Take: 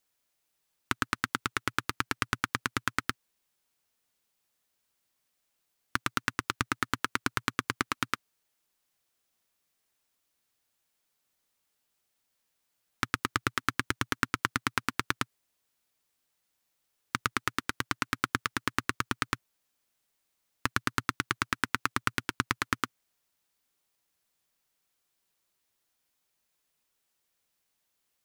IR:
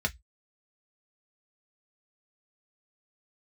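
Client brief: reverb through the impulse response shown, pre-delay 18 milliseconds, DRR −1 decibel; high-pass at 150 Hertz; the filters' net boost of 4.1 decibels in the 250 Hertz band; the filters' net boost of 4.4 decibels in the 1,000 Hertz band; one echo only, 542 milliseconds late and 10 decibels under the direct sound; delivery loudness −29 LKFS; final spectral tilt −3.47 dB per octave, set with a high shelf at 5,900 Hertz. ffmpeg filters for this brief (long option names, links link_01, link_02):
-filter_complex "[0:a]highpass=150,equalizer=frequency=250:width_type=o:gain=5,equalizer=frequency=1000:width_type=o:gain=6,highshelf=frequency=5900:gain=-3.5,aecho=1:1:542:0.316,asplit=2[link_01][link_02];[1:a]atrim=start_sample=2205,adelay=18[link_03];[link_02][link_03]afir=irnorm=-1:irlink=0,volume=-6.5dB[link_04];[link_01][link_04]amix=inputs=2:normalize=0,volume=-2.5dB"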